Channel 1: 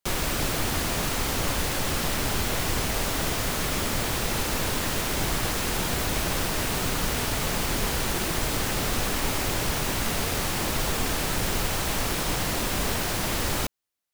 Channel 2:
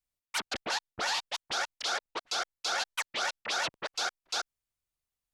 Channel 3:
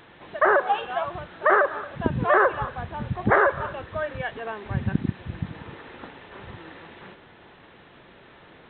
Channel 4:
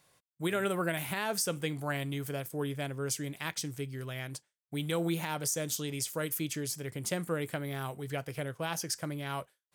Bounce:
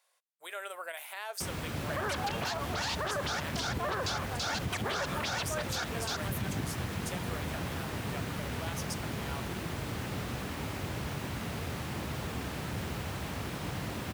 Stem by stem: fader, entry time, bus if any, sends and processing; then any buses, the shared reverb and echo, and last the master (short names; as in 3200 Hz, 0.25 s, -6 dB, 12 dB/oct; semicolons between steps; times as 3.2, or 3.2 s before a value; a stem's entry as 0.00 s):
-10.5 dB, 1.35 s, no send, HPF 70 Hz 24 dB/oct; tone controls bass +7 dB, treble -8 dB
+1.0 dB, 1.75 s, no send, dry
-6.5 dB, 1.55 s, no send, limiter -16.5 dBFS, peak gain reduction 11 dB
-6.0 dB, 0.00 s, no send, inverse Chebyshev high-pass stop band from 270 Hz, stop band 40 dB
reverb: off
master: limiter -24.5 dBFS, peak gain reduction 9 dB